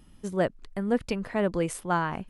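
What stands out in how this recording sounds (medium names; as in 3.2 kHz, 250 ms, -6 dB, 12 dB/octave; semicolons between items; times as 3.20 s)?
noise floor -54 dBFS; spectral tilt -5.5 dB/octave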